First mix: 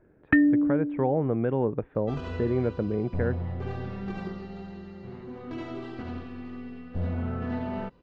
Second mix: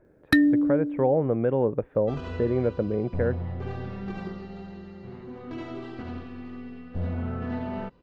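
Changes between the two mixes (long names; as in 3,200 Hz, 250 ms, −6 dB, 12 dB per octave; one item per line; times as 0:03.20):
speech: add parametric band 540 Hz +6.5 dB 0.44 octaves
first sound: remove Chebyshev low-pass filter 2,900 Hz, order 6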